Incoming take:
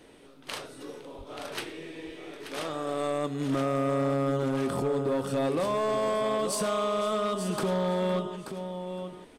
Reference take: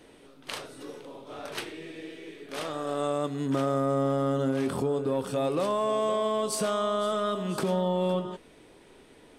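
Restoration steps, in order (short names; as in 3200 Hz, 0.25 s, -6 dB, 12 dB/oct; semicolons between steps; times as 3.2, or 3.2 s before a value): clip repair -22.5 dBFS; 1.17–1.29 HPF 140 Hz 24 dB/oct; inverse comb 0.882 s -9.5 dB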